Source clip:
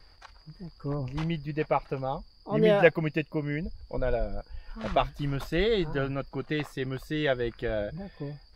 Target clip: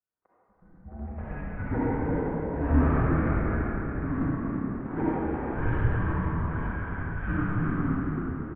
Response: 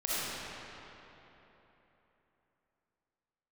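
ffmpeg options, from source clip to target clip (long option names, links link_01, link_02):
-filter_complex "[0:a]agate=range=-30dB:threshold=-44dB:ratio=16:detection=peak,asplit=2[link_01][link_02];[link_02]acrusher=bits=3:mix=0:aa=0.000001,volume=-5.5dB[link_03];[link_01][link_03]amix=inputs=2:normalize=0,aresample=11025,asoftclip=type=hard:threshold=-18.5dB,aresample=44100,bandreject=frequency=99.7:width_type=h:width=4,bandreject=frequency=199.4:width_type=h:width=4,bandreject=frequency=299.1:width_type=h:width=4,bandreject=frequency=398.8:width_type=h:width=4,bandreject=frequency=498.5:width_type=h:width=4,bandreject=frequency=598.2:width_type=h:width=4,bandreject=frequency=697.9:width_type=h:width=4,bandreject=frequency=797.6:width_type=h:width=4,bandreject=frequency=897.3:width_type=h:width=4,bandreject=frequency=997:width_type=h:width=4,bandreject=frequency=1096.7:width_type=h:width=4,bandreject=frequency=1196.4:width_type=h:width=4,bandreject=frequency=1296.1:width_type=h:width=4,bandreject=frequency=1395.8:width_type=h:width=4,bandreject=frequency=1495.5:width_type=h:width=4,bandreject=frequency=1595.2:width_type=h:width=4,bandreject=frequency=1694.9:width_type=h:width=4,bandreject=frequency=1794.6:width_type=h:width=4,bandreject=frequency=1894.3:width_type=h:width=4,bandreject=frequency=1994:width_type=h:width=4,bandreject=frequency=2093.7:width_type=h:width=4,bandreject=frequency=2193.4:width_type=h:width=4,bandreject=frequency=2293.1:width_type=h:width=4,bandreject=frequency=2392.8:width_type=h:width=4,bandreject=frequency=2492.5:width_type=h:width=4,bandreject=frequency=2592.2:width_type=h:width=4,bandreject=frequency=2691.9:width_type=h:width=4,bandreject=frequency=2791.6:width_type=h:width=4,bandreject=frequency=2891.3:width_type=h:width=4,bandreject=frequency=2991:width_type=h:width=4,bandreject=frequency=3090.7:width_type=h:width=4,bandreject=frequency=3190.4:width_type=h:width=4,bandreject=frequency=3290.1:width_type=h:width=4,bandreject=frequency=3389.8:width_type=h:width=4,bandreject=frequency=3489.5:width_type=h:width=4,bandreject=frequency=3589.2:width_type=h:width=4,bandreject=frequency=3688.9:width_type=h:width=4,bandreject=frequency=3788.6:width_type=h:width=4,bandreject=frequency=3888.3:width_type=h:width=4,asplit=5[link_04][link_05][link_06][link_07][link_08];[link_05]adelay=339,afreqshift=67,volume=-8dB[link_09];[link_06]adelay=678,afreqshift=134,volume=-16.9dB[link_10];[link_07]adelay=1017,afreqshift=201,volume=-25.7dB[link_11];[link_08]adelay=1356,afreqshift=268,volume=-34.6dB[link_12];[link_04][link_09][link_10][link_11][link_12]amix=inputs=5:normalize=0[link_13];[1:a]atrim=start_sample=2205[link_14];[link_13][link_14]afir=irnorm=-1:irlink=0,highpass=frequency=230:width_type=q:width=0.5412,highpass=frequency=230:width_type=q:width=1.307,lowpass=frequency=2100:width_type=q:width=0.5176,lowpass=frequency=2100:width_type=q:width=0.7071,lowpass=frequency=2100:width_type=q:width=1.932,afreqshift=-360,volume=-7dB"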